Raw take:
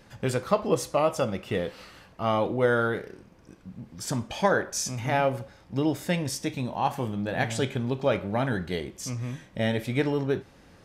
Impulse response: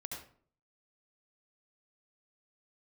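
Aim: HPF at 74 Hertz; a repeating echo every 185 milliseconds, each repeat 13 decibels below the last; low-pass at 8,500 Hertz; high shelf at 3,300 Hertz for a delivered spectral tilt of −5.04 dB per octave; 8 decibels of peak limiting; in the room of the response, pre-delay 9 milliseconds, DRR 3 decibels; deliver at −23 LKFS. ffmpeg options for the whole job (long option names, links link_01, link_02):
-filter_complex "[0:a]highpass=74,lowpass=8500,highshelf=frequency=3300:gain=3.5,alimiter=limit=-17dB:level=0:latency=1,aecho=1:1:185|370|555:0.224|0.0493|0.0108,asplit=2[link_01][link_02];[1:a]atrim=start_sample=2205,adelay=9[link_03];[link_02][link_03]afir=irnorm=-1:irlink=0,volume=-1.5dB[link_04];[link_01][link_04]amix=inputs=2:normalize=0,volume=4.5dB"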